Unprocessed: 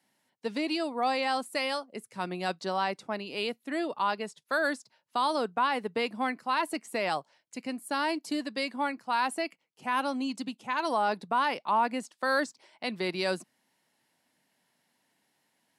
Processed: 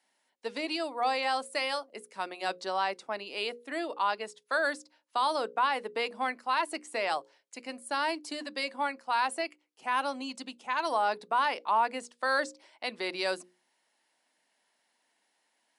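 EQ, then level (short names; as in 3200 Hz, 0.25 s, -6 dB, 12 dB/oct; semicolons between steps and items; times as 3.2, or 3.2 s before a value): HPF 390 Hz 12 dB/oct; brick-wall FIR low-pass 11000 Hz; notches 60/120/180/240/300/360/420/480/540 Hz; 0.0 dB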